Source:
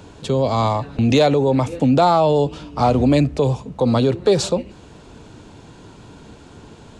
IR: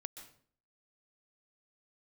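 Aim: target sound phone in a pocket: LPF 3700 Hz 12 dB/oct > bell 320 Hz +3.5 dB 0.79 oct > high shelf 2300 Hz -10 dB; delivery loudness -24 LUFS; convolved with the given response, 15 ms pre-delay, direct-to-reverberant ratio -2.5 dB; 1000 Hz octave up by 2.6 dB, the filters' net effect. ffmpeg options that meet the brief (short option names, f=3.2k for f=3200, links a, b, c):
-filter_complex "[0:a]equalizer=f=1k:t=o:g=5,asplit=2[a][b];[1:a]atrim=start_sample=2205,adelay=15[c];[b][c]afir=irnorm=-1:irlink=0,volume=6dB[d];[a][d]amix=inputs=2:normalize=0,lowpass=3.7k,equalizer=f=320:t=o:w=0.79:g=3.5,highshelf=f=2.3k:g=-10,volume=-12.5dB"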